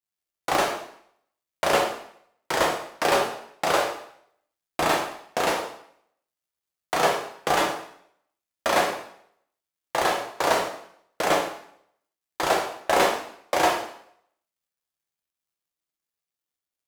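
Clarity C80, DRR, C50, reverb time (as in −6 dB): 9.0 dB, −0.5 dB, 6.0 dB, 0.65 s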